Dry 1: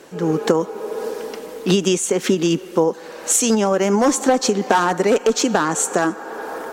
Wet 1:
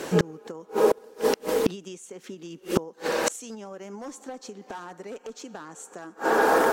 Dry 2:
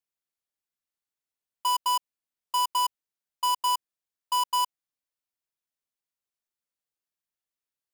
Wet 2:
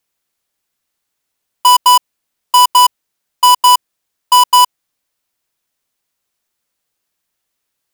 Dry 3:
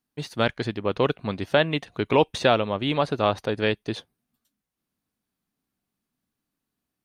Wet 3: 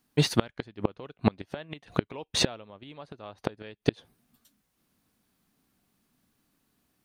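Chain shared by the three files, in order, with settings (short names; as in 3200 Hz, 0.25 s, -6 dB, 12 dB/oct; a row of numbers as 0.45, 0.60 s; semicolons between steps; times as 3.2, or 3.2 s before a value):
flipped gate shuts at -18 dBFS, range -32 dB; normalise peaks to -6 dBFS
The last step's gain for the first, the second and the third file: +9.5, +17.5, +10.5 dB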